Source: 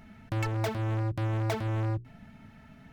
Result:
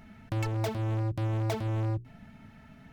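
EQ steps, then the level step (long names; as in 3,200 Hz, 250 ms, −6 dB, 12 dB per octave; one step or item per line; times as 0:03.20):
dynamic equaliser 1,600 Hz, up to −5 dB, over −50 dBFS, Q 1.1
0.0 dB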